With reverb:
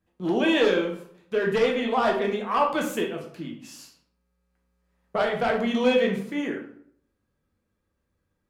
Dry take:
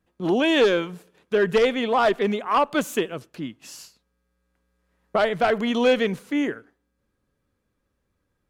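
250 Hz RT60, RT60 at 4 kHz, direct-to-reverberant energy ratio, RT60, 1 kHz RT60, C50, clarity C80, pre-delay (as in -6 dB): 0.70 s, 0.40 s, 0.0 dB, 0.60 s, 0.60 s, 7.0 dB, 10.5 dB, 7 ms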